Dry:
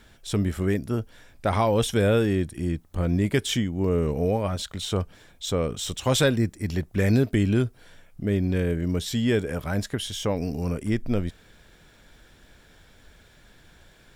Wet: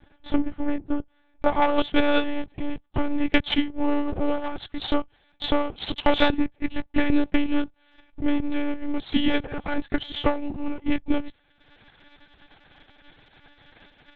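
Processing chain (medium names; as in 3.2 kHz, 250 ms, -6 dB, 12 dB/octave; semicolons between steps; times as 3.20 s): comb filter that takes the minimum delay 4.3 ms; monotone LPC vocoder at 8 kHz 290 Hz; treble shelf 2 kHz -7.5 dB, from 1.62 s +6.5 dB; transient shaper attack +7 dB, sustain -10 dB; peaking EQ 800 Hz +8 dB 0.3 oct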